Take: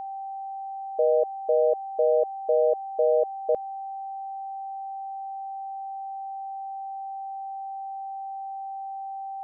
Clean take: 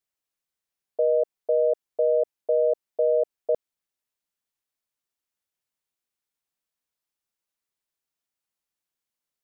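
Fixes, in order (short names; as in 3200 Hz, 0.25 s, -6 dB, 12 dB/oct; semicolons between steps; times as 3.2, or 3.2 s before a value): notch 780 Hz, Q 30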